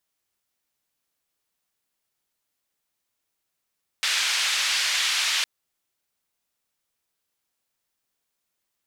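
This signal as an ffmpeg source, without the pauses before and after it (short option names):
-f lavfi -i "anoisesrc=c=white:d=1.41:r=44100:seed=1,highpass=f=1800,lowpass=f=4400,volume=-10.3dB"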